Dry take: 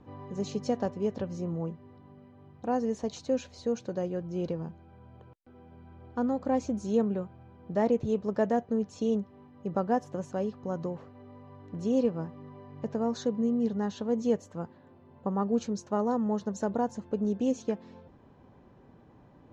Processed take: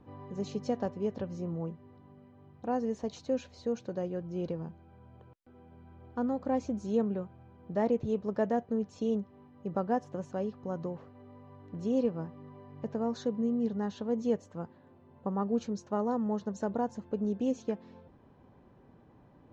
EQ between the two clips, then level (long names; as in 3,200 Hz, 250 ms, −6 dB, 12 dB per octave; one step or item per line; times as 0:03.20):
high-frequency loss of the air 58 metres
−2.5 dB